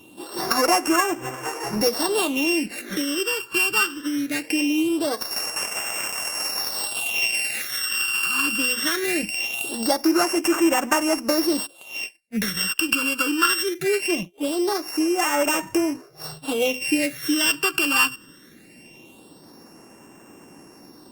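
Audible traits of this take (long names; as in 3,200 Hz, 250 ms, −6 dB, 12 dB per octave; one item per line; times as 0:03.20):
a buzz of ramps at a fixed pitch in blocks of 16 samples
phaser sweep stages 12, 0.21 Hz, lowest notch 650–4,000 Hz
Opus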